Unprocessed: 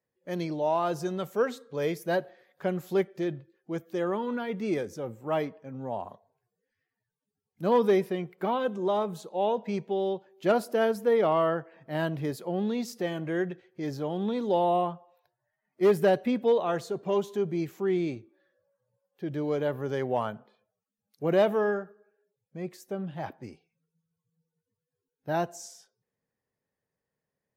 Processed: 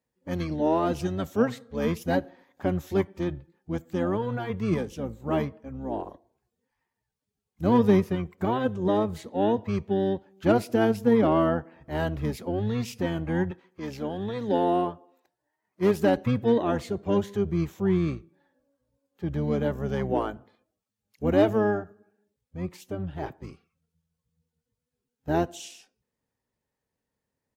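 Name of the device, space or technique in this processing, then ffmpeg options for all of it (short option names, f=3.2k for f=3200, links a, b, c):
octave pedal: -filter_complex "[0:a]asplit=2[a][b];[b]asetrate=22050,aresample=44100,atempo=2,volume=-1dB[c];[a][c]amix=inputs=2:normalize=0,asettb=1/sr,asplit=3[d][e][f];[d]atrim=end=13.514[g];[e]atrim=start=13.51:end=16.17,asetpts=PTS-STARTPTS,afade=t=in:d=0.004:c=qsin,afade=t=out:st=2.656:d=0.004:c=qsin,highpass=f=270:p=1[h];[f]atrim=start=16.166[i];[g][h]acrossfade=d=0.004:c1=hsin:c2=qsin[j];[j][i]acrossfade=d=0.004:c1=qsin:c2=hsin"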